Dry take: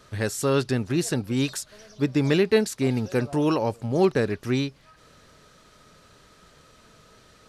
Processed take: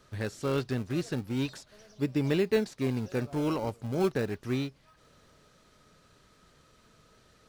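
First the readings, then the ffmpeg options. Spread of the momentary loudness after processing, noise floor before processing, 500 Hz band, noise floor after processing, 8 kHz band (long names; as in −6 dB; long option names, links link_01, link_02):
7 LU, −56 dBFS, −7.0 dB, −63 dBFS, −14.5 dB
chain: -filter_complex "[0:a]acrossover=split=5400[link_01][link_02];[link_02]acompressor=threshold=-49dB:ratio=4:attack=1:release=60[link_03];[link_01][link_03]amix=inputs=2:normalize=0,asplit=2[link_04][link_05];[link_05]acrusher=samples=34:mix=1:aa=0.000001:lfo=1:lforange=34:lforate=0.34,volume=-11dB[link_06];[link_04][link_06]amix=inputs=2:normalize=0,volume=-8dB"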